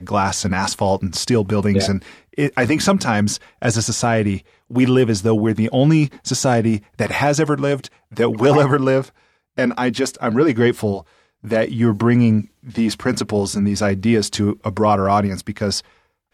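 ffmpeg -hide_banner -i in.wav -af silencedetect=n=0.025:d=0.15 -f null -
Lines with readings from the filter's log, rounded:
silence_start: 2.11
silence_end: 2.33 | silence_duration: 0.22
silence_start: 3.37
silence_end: 3.62 | silence_duration: 0.25
silence_start: 4.38
silence_end: 4.71 | silence_duration: 0.32
silence_start: 6.79
silence_end: 6.99 | silence_duration: 0.20
silence_start: 7.87
silence_end: 8.12 | silence_duration: 0.25
silence_start: 9.08
silence_end: 9.58 | silence_duration: 0.49
silence_start: 11.01
silence_end: 11.45 | silence_duration: 0.44
silence_start: 12.45
silence_end: 12.66 | silence_duration: 0.22
silence_start: 15.80
silence_end: 16.34 | silence_duration: 0.54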